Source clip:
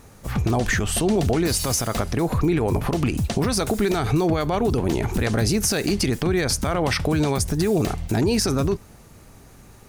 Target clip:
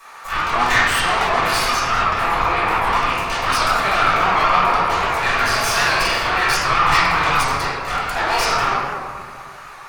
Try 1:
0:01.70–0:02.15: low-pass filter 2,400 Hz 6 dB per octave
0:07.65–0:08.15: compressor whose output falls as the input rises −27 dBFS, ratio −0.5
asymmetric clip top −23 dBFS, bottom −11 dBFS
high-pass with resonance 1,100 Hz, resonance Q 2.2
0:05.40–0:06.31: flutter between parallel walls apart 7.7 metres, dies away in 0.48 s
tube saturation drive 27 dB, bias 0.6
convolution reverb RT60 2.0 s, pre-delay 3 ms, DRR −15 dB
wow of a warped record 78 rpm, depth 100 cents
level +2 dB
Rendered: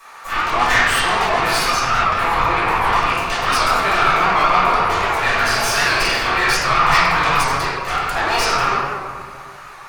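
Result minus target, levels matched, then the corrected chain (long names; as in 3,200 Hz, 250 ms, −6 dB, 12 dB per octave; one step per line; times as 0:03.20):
asymmetric clip: distortion −4 dB
0:01.70–0:02.15: low-pass filter 2,400 Hz 6 dB per octave
0:07.65–0:08.15: compressor whose output falls as the input rises −27 dBFS, ratio −0.5
asymmetric clip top −34.5 dBFS, bottom −11 dBFS
high-pass with resonance 1,100 Hz, resonance Q 2.2
0:05.40–0:06.31: flutter between parallel walls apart 7.7 metres, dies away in 0.48 s
tube saturation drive 27 dB, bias 0.6
convolution reverb RT60 2.0 s, pre-delay 3 ms, DRR −15 dB
wow of a warped record 78 rpm, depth 100 cents
level +2 dB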